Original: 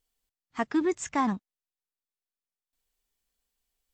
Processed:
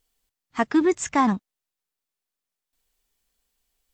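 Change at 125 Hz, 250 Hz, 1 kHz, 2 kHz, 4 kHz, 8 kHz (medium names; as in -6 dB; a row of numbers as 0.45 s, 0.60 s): +6.5 dB, +6.5 dB, +6.5 dB, +6.5 dB, +6.5 dB, +6.5 dB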